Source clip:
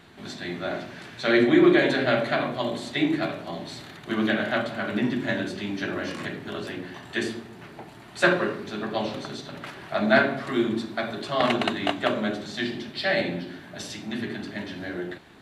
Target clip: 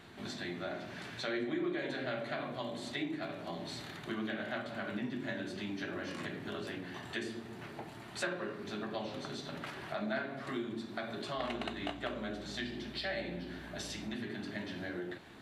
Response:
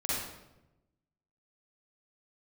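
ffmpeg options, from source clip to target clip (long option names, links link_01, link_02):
-filter_complex "[0:a]acompressor=threshold=-36dB:ratio=3,asettb=1/sr,asplit=3[link_01][link_02][link_03];[link_01]atrim=end=11.374[link_04];[link_02]atrim=start=11.37:end=14.15,asetpts=PTS-STARTPTS,afade=type=in:duration=0.004:curve=qsin,afade=type=out:start_time=2.776:duration=0.004:curve=qsin,aeval=exprs='val(0)+0.00282*(sin(2*PI*60*n/s)+sin(2*PI*2*60*n/s)/2+sin(2*PI*3*60*n/s)/3+sin(2*PI*4*60*n/s)/4+sin(2*PI*5*60*n/s)/5)':channel_layout=same[link_05];[link_03]atrim=start=14.146[link_06];[link_04][link_05]acrossfade=duration=0.004:curve1=hsin:curve2=qsin[link_07];[link_07][link_06]acrossfade=duration=0.004:curve1=qsin:curve2=hsin,flanger=delay=8.7:depth=8.6:regen=-71:speed=0.13:shape=sinusoidal,volume=1.5dB"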